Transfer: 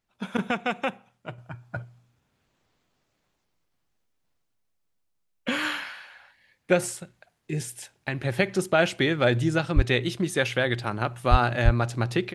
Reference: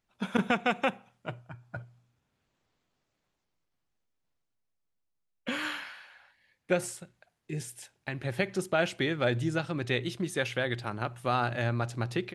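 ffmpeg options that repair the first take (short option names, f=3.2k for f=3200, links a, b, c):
-filter_complex "[0:a]asplit=3[a][b][c];[a]afade=t=out:st=9.75:d=0.02[d];[b]highpass=f=140:w=0.5412,highpass=f=140:w=1.3066,afade=t=in:st=9.75:d=0.02,afade=t=out:st=9.87:d=0.02[e];[c]afade=t=in:st=9.87:d=0.02[f];[d][e][f]amix=inputs=3:normalize=0,asplit=3[g][h][i];[g]afade=t=out:st=11.3:d=0.02[j];[h]highpass=f=140:w=0.5412,highpass=f=140:w=1.3066,afade=t=in:st=11.3:d=0.02,afade=t=out:st=11.42:d=0.02[k];[i]afade=t=in:st=11.42:d=0.02[l];[j][k][l]amix=inputs=3:normalize=0,asplit=3[m][n][o];[m]afade=t=out:st=11.64:d=0.02[p];[n]highpass=f=140:w=0.5412,highpass=f=140:w=1.3066,afade=t=in:st=11.64:d=0.02,afade=t=out:st=11.76:d=0.02[q];[o]afade=t=in:st=11.76:d=0.02[r];[p][q][r]amix=inputs=3:normalize=0,asetnsamples=n=441:p=0,asendcmd='1.38 volume volume -6dB',volume=0dB"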